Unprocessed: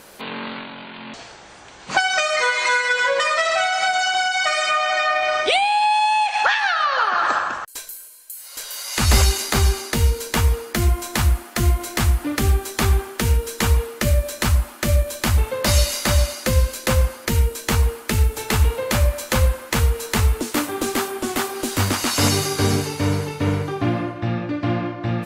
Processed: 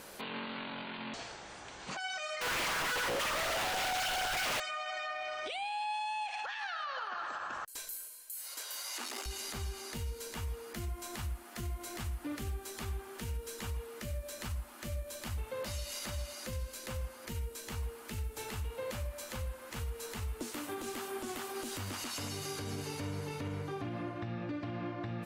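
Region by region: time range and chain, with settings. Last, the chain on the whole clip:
2.41–4.6 high shelf 3800 Hz +11 dB + Schmitt trigger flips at -22 dBFS + Doppler distortion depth 0.87 ms
8.54–9.26 tube stage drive 13 dB, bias 0.45 + rippled Chebyshev high-pass 240 Hz, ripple 3 dB
whole clip: dynamic EQ 2900 Hz, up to +3 dB, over -40 dBFS, Q 4.6; compressor, threshold -29 dBFS; limiter -25 dBFS; gain -5.5 dB

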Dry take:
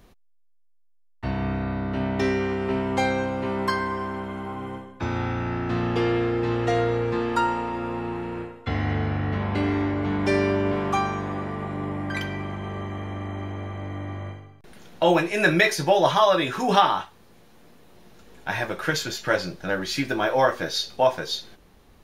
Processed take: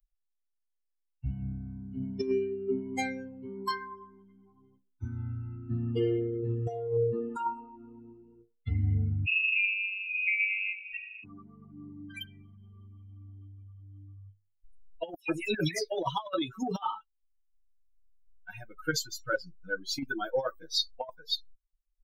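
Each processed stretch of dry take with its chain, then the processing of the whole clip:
9.26–11.24 median filter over 41 samples + inverted band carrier 2700 Hz + feedback echo 95 ms, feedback 56%, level -6.5 dB
15.14–15.92 bell 310 Hz -3.5 dB 0.33 oct + dispersion lows, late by 0.149 s, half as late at 3000 Hz
whole clip: per-bin expansion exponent 3; bell 360 Hz +3.5 dB 1.9 oct; negative-ratio compressor -28 dBFS, ratio -0.5

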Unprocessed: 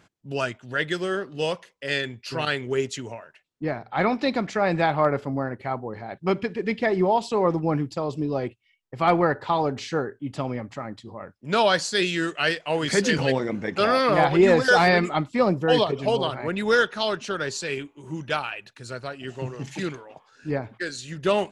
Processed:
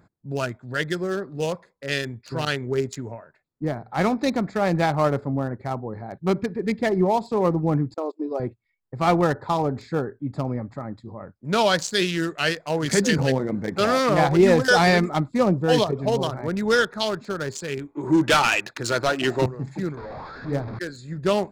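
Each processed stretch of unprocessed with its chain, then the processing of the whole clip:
7.94–8.4 brick-wall FIR high-pass 280 Hz + gate -31 dBFS, range -23 dB
17.95–19.46 bell 320 Hz +9.5 dB 0.25 oct + overdrive pedal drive 24 dB, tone 3800 Hz, clips at -8.5 dBFS
19.97–20.79 delta modulation 32 kbps, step -28.5 dBFS + LPF 4500 Hz + notches 50/100/150/200/250/300/350/400/450 Hz
whole clip: Wiener smoothing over 15 samples; tone controls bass +5 dB, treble +8 dB

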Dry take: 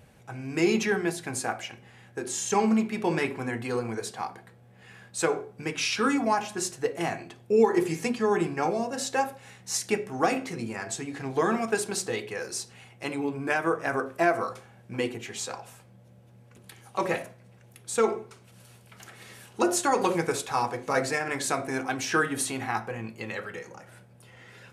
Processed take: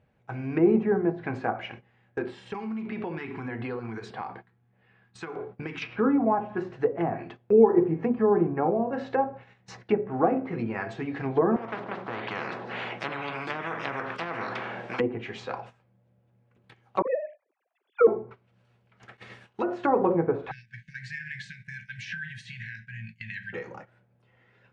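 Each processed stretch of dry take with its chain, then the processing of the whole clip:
2.23–5.82 compressor 16:1, threshold -32 dBFS + LFO notch square 1.6 Hz 560–6500 Hz
11.56–15 HPF 340 Hz + spectral compressor 10:1
17.02–18.07 sine-wave speech + resonant high-pass 250 Hz, resonance Q 1.6 + dispersion lows, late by 49 ms, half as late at 680 Hz
19.17–19.84 expander -48 dBFS + compressor 1.5:1, threshold -40 dBFS + mismatched tape noise reduction encoder only
20.51–23.53 low shelf 81 Hz -5.5 dB + compressor 4:1, threshold -32 dBFS + brick-wall FIR band-stop 210–1500 Hz
whole clip: treble ducked by the level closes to 810 Hz, closed at -24.5 dBFS; gate -46 dBFS, range -15 dB; LPF 2600 Hz 12 dB/oct; gain +3.5 dB

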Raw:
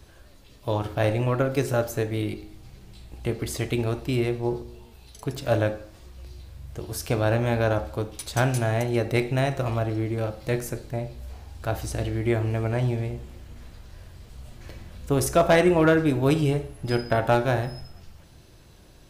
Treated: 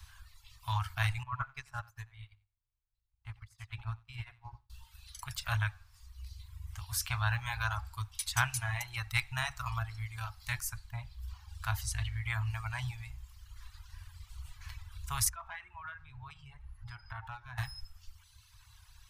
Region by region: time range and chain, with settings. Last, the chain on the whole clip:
1.23–4.7 LPF 1500 Hz 6 dB/oct + feedback echo 89 ms, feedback 22%, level -4.5 dB + upward expander 2.5:1, over -40 dBFS
15.29–17.58 LPF 1200 Hz 6 dB/oct + bell 660 Hz -4 dB 0.34 oct + compressor 2.5:1, threshold -34 dBFS
whole clip: reverb removal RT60 1.6 s; elliptic band-stop 100–980 Hz, stop band 40 dB

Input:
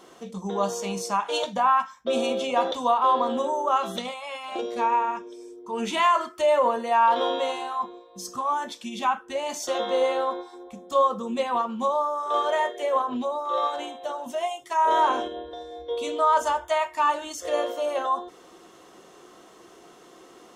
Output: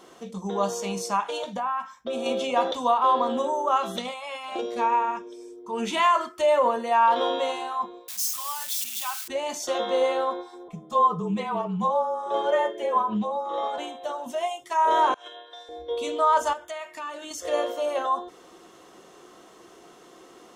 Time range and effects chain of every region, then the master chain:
1.3–2.26 dynamic EQ 5100 Hz, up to -4 dB, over -38 dBFS, Q 0.74 + compressor 2:1, threshold -30 dBFS
8.08–9.28 switching spikes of -21 dBFS + passive tone stack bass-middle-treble 10-0-10
10.68–13.78 high shelf 2300 Hz -8.5 dB + comb 4.7 ms, depth 68% + frequency shift -36 Hz
15.14–15.69 HPF 1200 Hz + negative-ratio compressor -42 dBFS, ratio -0.5
16.53–17.31 HPF 110 Hz 24 dB/oct + bell 930 Hz -9 dB 0.6 oct + compressor 2.5:1, threshold -35 dBFS
whole clip: dry

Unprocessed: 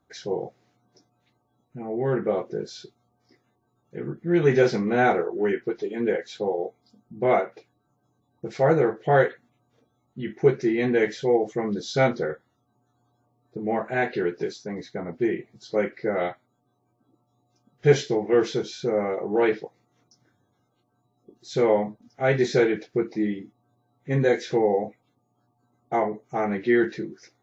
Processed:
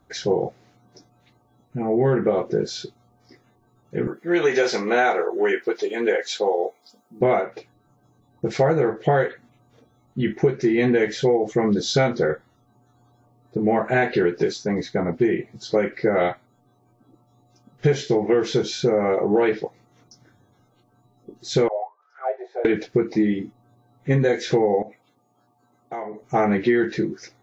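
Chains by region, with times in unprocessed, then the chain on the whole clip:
4.07–7.21 HPF 470 Hz + high shelf 5000 Hz +8 dB
21.68–22.65 upward compressor, threshold -28 dBFS + auto-wah 630–1600 Hz, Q 12, down, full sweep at -16 dBFS + brick-wall FIR high-pass 340 Hz
24.82–26.22 HPF 360 Hz 6 dB/oct + compressor 3:1, threshold -42 dBFS
whole clip: low shelf 62 Hz +9 dB; compressor 10:1, threshold -24 dBFS; gain +9 dB

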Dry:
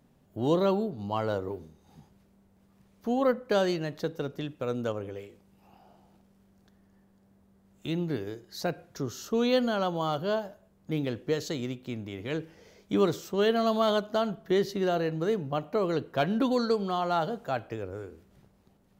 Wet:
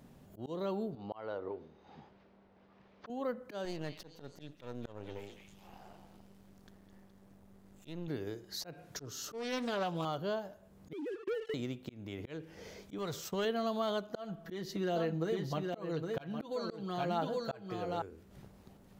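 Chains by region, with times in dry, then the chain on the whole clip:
0.95–3.1 LPF 5300 Hz 24 dB/oct + tone controls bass -13 dB, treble -11 dB
3.65–8.08 half-wave gain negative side -12 dB + delay with a stepping band-pass 0.209 s, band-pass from 2800 Hz, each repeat 0.7 oct, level -7.5 dB
8.72–10.05 high shelf 3700 Hz +4.5 dB + comb 6.8 ms, depth 41% + Doppler distortion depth 0.39 ms
10.93–11.54 sine-wave speech + sample leveller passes 3 + compressor 2.5:1, threshold -34 dBFS
12.98–13.45 expander -44 dBFS + bell 300 Hz -12 dB 0.96 oct + sample leveller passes 1
14.1–18.02 comb 6.1 ms, depth 61% + echo 0.812 s -6 dB
whole clip: auto swell 0.387 s; compressor 2:1, threshold -50 dBFS; gain +6 dB

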